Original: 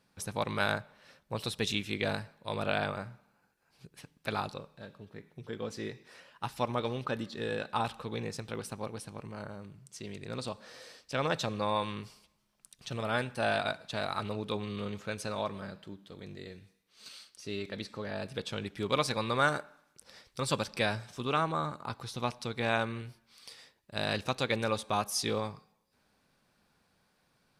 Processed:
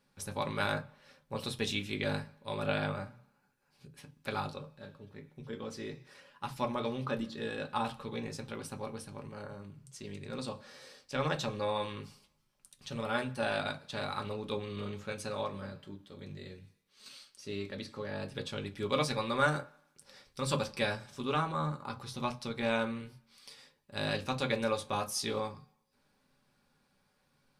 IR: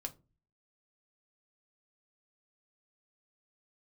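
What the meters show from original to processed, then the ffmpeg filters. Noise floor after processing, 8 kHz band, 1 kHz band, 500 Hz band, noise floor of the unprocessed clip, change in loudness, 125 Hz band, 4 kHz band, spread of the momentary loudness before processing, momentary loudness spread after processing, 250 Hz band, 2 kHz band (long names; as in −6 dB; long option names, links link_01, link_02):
−74 dBFS, −2.5 dB, −2.5 dB, −1.0 dB, −73 dBFS, −1.5 dB, −1.0 dB, −2.5 dB, 18 LU, 18 LU, −0.5 dB, −2.5 dB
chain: -filter_complex "[0:a]bandreject=frequency=670:width=12[link_01];[1:a]atrim=start_sample=2205,atrim=end_sample=4410[link_02];[link_01][link_02]afir=irnorm=-1:irlink=0"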